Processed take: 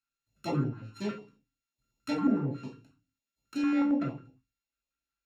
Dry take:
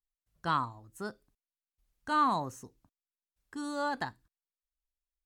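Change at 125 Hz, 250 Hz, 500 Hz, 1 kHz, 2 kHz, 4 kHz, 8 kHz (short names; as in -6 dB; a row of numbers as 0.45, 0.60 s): +9.5 dB, +11.0 dB, +2.0 dB, -11.0 dB, -6.0 dB, -3.0 dB, n/a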